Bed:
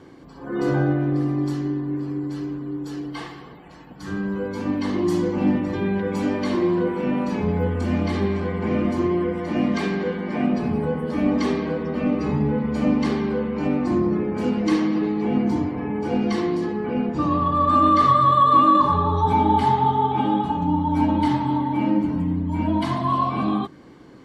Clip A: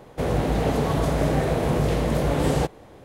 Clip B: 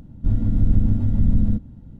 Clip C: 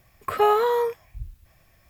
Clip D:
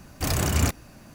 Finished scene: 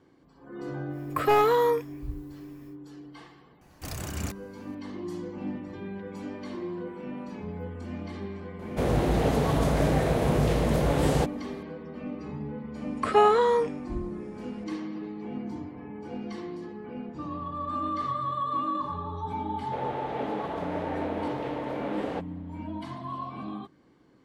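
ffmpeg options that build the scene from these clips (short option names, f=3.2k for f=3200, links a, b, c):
-filter_complex "[3:a]asplit=2[a][b];[1:a]asplit=2[c][d];[0:a]volume=-14.5dB[e];[a]asoftclip=type=hard:threshold=-15dB[f];[b]aresample=22050,aresample=44100[g];[d]acrossover=split=280 3400:gain=0.0708 1 0.0891[h][i][j];[h][i][j]amix=inputs=3:normalize=0[k];[f]atrim=end=1.89,asetpts=PTS-STARTPTS,volume=-0.5dB,afade=t=in:d=0.1,afade=t=out:st=1.79:d=0.1,adelay=880[l];[4:a]atrim=end=1.14,asetpts=PTS-STARTPTS,volume=-11.5dB,afade=t=in:d=0.004:c=hsin,afade=t=out:st=1.136:d=0.004:c=hsin,adelay=159201S[m];[c]atrim=end=3.04,asetpts=PTS-STARTPTS,volume=-2dB,afade=t=in:d=0.004:c=hsin,afade=t=out:st=3.036:d=0.004:c=hsin,adelay=8590[n];[g]atrim=end=1.89,asetpts=PTS-STARTPTS,volume=-0.5dB,afade=t=in:d=0.004:c=hsin,afade=t=out:st=1.886:d=0.004:c=hsin,adelay=12750[o];[k]atrim=end=3.04,asetpts=PTS-STARTPTS,volume=-7.5dB,afade=t=in:d=0.004:c=hsin,afade=t=out:st=3.036:d=0.004:c=hsin,adelay=19540[p];[e][l][m][n][o][p]amix=inputs=6:normalize=0"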